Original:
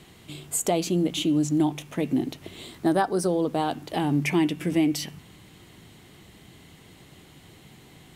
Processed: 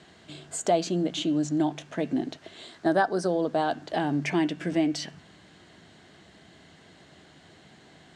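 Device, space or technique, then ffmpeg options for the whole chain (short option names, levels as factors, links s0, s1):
car door speaker: -filter_complex "[0:a]asettb=1/sr,asplit=3[s0][s1][s2];[s0]atrim=end=2.374[s3];[s1]atrim=start=2.37:end=2.86,asetpts=PTS-STARTPTS,afade=t=in:d=0.004:c=qsin,afade=t=out:st=0.486:d=0.004:c=qsin,lowshelf=f=360:g=-8[s4];[s2]atrim=start=2.856[s5];[s3][s4]acrossfade=d=0.004:c1=hsin:c2=qsin[s6];[s6][s5]acrossfade=d=0.004:c1=qsin:c2=hsin,highpass=82,equalizer=f=120:t=q:w=4:g=-8,equalizer=f=650:t=q:w=4:g=8,equalizer=f=1600:t=q:w=4:g=9,equalizer=f=2400:t=q:w=4:g=-3,equalizer=f=4400:t=q:w=4:g=3,lowpass=f=7600:w=0.5412,lowpass=f=7600:w=1.3066,volume=0.708"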